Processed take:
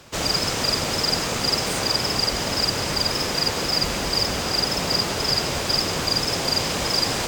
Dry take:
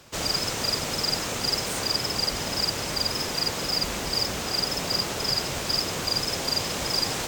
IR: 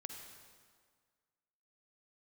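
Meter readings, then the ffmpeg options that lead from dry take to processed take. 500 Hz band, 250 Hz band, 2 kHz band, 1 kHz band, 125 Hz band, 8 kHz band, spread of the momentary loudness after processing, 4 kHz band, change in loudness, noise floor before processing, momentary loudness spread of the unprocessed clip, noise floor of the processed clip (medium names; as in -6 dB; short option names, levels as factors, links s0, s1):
+5.5 dB, +5.5 dB, +5.0 dB, +5.0 dB, +5.5 dB, +3.0 dB, 1 LU, +4.0 dB, +4.0 dB, -31 dBFS, 1 LU, -26 dBFS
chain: -filter_complex "[0:a]asplit=2[s0][s1];[1:a]atrim=start_sample=2205,asetrate=26901,aresample=44100,highshelf=f=8100:g=-10.5[s2];[s1][s2]afir=irnorm=-1:irlink=0,volume=1[s3];[s0][s3]amix=inputs=2:normalize=0"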